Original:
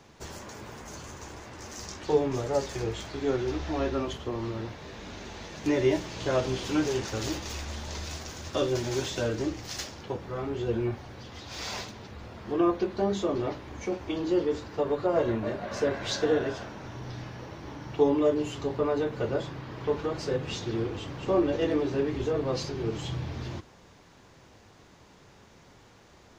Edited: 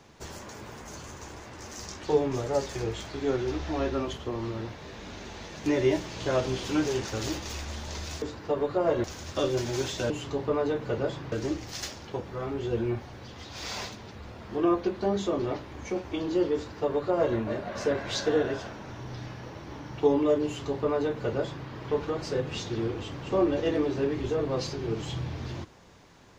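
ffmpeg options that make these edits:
ffmpeg -i in.wav -filter_complex "[0:a]asplit=5[link_01][link_02][link_03][link_04][link_05];[link_01]atrim=end=8.222[link_06];[link_02]atrim=start=14.508:end=15.332[link_07];[link_03]atrim=start=8.218:end=9.282[link_08];[link_04]atrim=start=18.408:end=19.632[link_09];[link_05]atrim=start=9.278[link_10];[link_06][link_07]acrossfade=duration=0.004:curve1=hsin:curve2=hsin[link_11];[link_11][link_08]acrossfade=duration=0.004:curve1=hsin:curve2=hsin[link_12];[link_12][link_09]acrossfade=duration=0.004:curve1=hsin:curve2=hsin[link_13];[link_13][link_10]acrossfade=duration=0.004:curve1=hsin:curve2=hsin" out.wav

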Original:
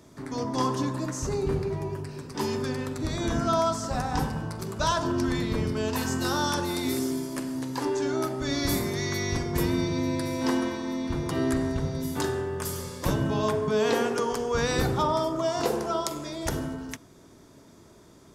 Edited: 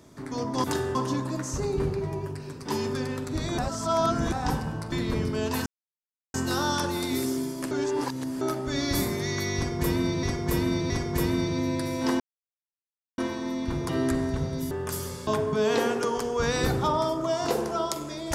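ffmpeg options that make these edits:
ffmpeg -i in.wav -filter_complex "[0:a]asplit=14[link_01][link_02][link_03][link_04][link_05][link_06][link_07][link_08][link_09][link_10][link_11][link_12][link_13][link_14];[link_01]atrim=end=0.642[link_15];[link_02]atrim=start=12.128:end=12.442[link_16];[link_03]atrim=start=0.638:end=3.272[link_17];[link_04]atrim=start=3.268:end=4.012,asetpts=PTS-STARTPTS,areverse[link_18];[link_05]atrim=start=4.008:end=4.612[link_19];[link_06]atrim=start=5.338:end=6.08,asetpts=PTS-STARTPTS,afade=type=out:start_time=0.738:duration=0.004:curve=hsin,apad=pad_dur=0.68[link_20];[link_07]atrim=start=6.08:end=7.452,asetpts=PTS-STARTPTS,afade=type=in:duration=0.004:curve=hsin[link_21];[link_08]atrim=start=7.448:end=8.152,asetpts=PTS-STARTPTS,areverse[link_22];[link_09]atrim=start=8.148:end=9.972[link_23];[link_10]atrim=start=9.298:end=9.972[link_24];[link_11]atrim=start=9.298:end=10.6,asetpts=PTS-STARTPTS,afade=type=out:start_time=1.298:duration=0.004:curve=hsin,apad=pad_dur=0.98[link_25];[link_12]atrim=start=10.6:end=12.132,asetpts=PTS-STARTPTS,afade=type=in:duration=0.004:curve=hsin[link_26];[link_13]atrim=start=12.438:end=13.002[link_27];[link_14]atrim=start=13.418[link_28];[link_15][link_16]acrossfade=duration=0.004:curve1=hsin:curve2=hsin[link_29];[link_29][link_17]acrossfade=duration=0.004:curve1=hsin:curve2=hsin[link_30];[link_30][link_18]acrossfade=duration=0.004:curve1=hsin:curve2=hsin[link_31];[link_31][link_19]acrossfade=duration=0.004:curve1=hsin:curve2=hsin[link_32];[link_20][link_21]concat=n=2:v=0:a=1[link_33];[link_32][link_33]acrossfade=duration=0.004:curve1=hsin:curve2=hsin[link_34];[link_34][link_22]acrossfade=duration=0.004:curve1=hsin:curve2=hsin[link_35];[link_35][link_23]acrossfade=duration=0.004:curve1=hsin:curve2=hsin[link_36];[link_36][link_24]acrossfade=duration=0.004:curve1=hsin:curve2=hsin[link_37];[link_25][link_26]concat=n=2:v=0:a=1[link_38];[link_37][link_38]acrossfade=duration=0.004:curve1=hsin:curve2=hsin[link_39];[link_39][link_27]acrossfade=duration=0.004:curve1=hsin:curve2=hsin[link_40];[link_40][link_28]acrossfade=duration=0.004:curve1=hsin:curve2=hsin" out.wav

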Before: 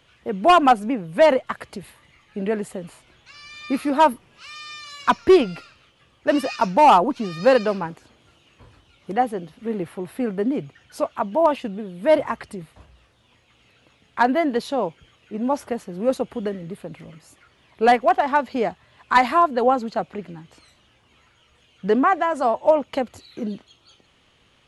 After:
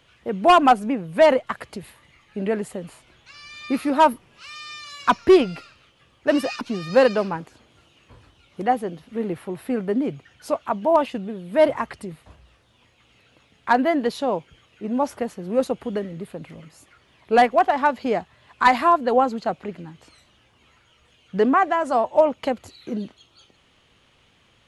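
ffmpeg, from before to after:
ffmpeg -i in.wav -filter_complex "[0:a]asplit=2[link_01][link_02];[link_01]atrim=end=6.612[link_03];[link_02]atrim=start=7.108[link_04];[link_03][link_04]acrossfade=duration=0.004:curve1=hsin:curve2=hsin" out.wav

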